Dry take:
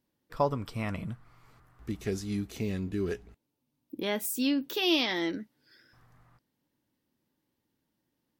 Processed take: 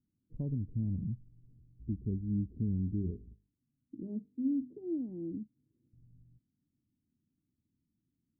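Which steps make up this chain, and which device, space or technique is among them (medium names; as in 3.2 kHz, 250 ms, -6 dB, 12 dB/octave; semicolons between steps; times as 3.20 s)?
3.00–4.77 s: hum notches 50/100/150/200/250/300/350/400/450 Hz; the neighbour's flat through the wall (low-pass 270 Hz 24 dB/octave; peaking EQ 89 Hz +4 dB 0.77 oct)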